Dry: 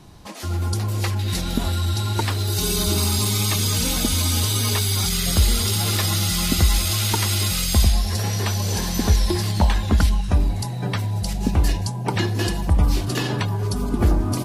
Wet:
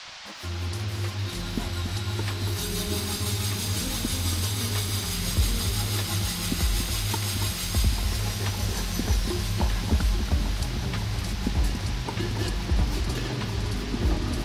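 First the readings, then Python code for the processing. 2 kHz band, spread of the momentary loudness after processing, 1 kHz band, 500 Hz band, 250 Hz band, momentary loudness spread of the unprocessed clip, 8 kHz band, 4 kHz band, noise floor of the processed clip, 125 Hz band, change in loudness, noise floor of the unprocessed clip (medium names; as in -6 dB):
-4.5 dB, 5 LU, -7.0 dB, -6.5 dB, -6.5 dB, 6 LU, -7.5 dB, -6.0 dB, -33 dBFS, -6.5 dB, -6.5 dB, -27 dBFS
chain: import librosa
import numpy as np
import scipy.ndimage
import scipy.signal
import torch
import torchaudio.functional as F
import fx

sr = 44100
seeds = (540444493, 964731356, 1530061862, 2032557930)

p1 = fx.rotary(x, sr, hz=6.0)
p2 = np.sign(p1) * np.maximum(np.abs(p1) - 10.0 ** (-48.5 / 20.0), 0.0)
p3 = fx.dmg_noise_band(p2, sr, seeds[0], low_hz=630.0, high_hz=5400.0, level_db=-36.0)
p4 = p3 + fx.echo_alternate(p3, sr, ms=281, hz=2000.0, feedback_pct=87, wet_db=-7.5, dry=0)
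y = p4 * librosa.db_to_amplitude(-6.0)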